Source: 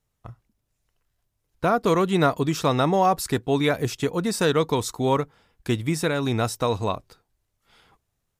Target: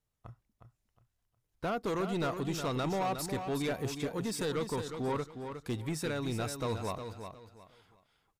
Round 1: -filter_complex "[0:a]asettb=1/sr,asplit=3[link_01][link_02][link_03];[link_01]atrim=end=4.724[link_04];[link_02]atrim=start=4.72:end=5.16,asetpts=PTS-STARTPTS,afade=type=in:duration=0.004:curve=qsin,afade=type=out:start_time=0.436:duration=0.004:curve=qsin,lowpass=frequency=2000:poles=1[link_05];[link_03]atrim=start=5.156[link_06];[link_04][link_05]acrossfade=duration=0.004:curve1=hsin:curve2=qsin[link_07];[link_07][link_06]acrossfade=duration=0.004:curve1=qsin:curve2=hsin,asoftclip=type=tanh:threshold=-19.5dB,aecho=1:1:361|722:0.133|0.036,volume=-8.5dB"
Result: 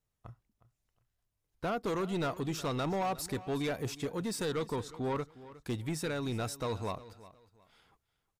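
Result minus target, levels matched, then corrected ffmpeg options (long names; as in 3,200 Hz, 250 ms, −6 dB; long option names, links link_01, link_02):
echo-to-direct −9.5 dB
-filter_complex "[0:a]asettb=1/sr,asplit=3[link_01][link_02][link_03];[link_01]atrim=end=4.724[link_04];[link_02]atrim=start=4.72:end=5.16,asetpts=PTS-STARTPTS,afade=type=in:duration=0.004:curve=qsin,afade=type=out:start_time=0.436:duration=0.004:curve=qsin,lowpass=frequency=2000:poles=1[link_05];[link_03]atrim=start=5.156[link_06];[link_04][link_05]acrossfade=duration=0.004:curve1=hsin:curve2=qsin[link_07];[link_07][link_06]acrossfade=duration=0.004:curve1=qsin:curve2=hsin,asoftclip=type=tanh:threshold=-19.5dB,aecho=1:1:361|722|1083:0.398|0.107|0.029,volume=-8.5dB"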